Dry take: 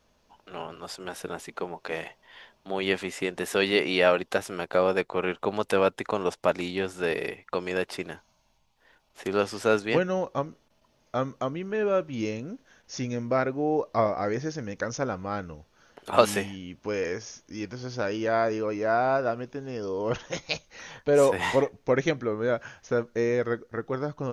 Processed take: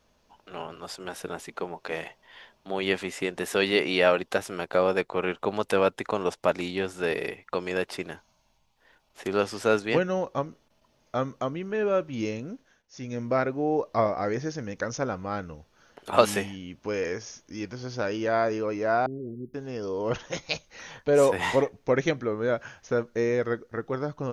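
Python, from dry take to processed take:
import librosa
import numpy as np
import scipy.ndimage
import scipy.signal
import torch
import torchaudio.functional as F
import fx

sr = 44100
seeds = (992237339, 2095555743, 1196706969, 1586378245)

y = fx.cheby1_bandstop(x, sr, low_hz=400.0, high_hz=10000.0, order=5, at=(19.06, 19.54))
y = fx.edit(y, sr, fx.fade_down_up(start_s=12.53, length_s=0.7, db=-19.0, fade_s=0.35), tone=tone)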